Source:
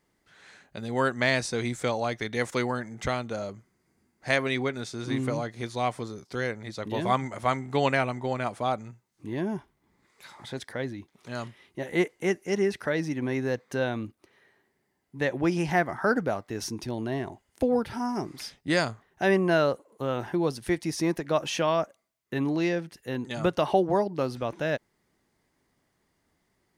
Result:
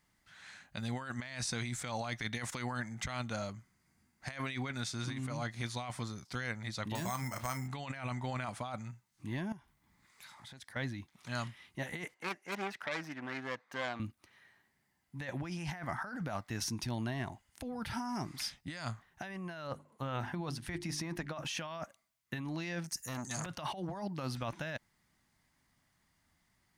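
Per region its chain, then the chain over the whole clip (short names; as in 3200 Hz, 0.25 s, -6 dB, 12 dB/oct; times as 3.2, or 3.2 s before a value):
6.95–7.68 careless resampling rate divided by 6×, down filtered, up hold + compressor 5:1, threshold -29 dBFS + doubler 32 ms -11.5 dB
9.52–10.76 compressor 2.5:1, threshold -53 dBFS + high shelf 9100 Hz +4 dB
12.14–14 self-modulated delay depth 0.3 ms + HPF 670 Hz + tilt -4 dB/oct
19.67–21.45 high shelf 4400 Hz -8 dB + notches 50/100/150/200/250/300/350/400 Hz
22.84–23.46 resonant high shelf 4500 Hz +11 dB, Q 3 + core saturation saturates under 2100 Hz
whole clip: bell 420 Hz -15 dB 1.1 oct; negative-ratio compressor -36 dBFS, ratio -1; gain -2.5 dB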